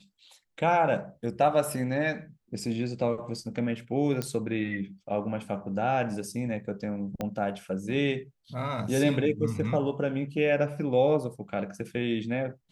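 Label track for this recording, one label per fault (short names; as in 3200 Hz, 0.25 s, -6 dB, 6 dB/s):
4.220000	4.220000	pop -16 dBFS
7.210000	7.210000	pop -18 dBFS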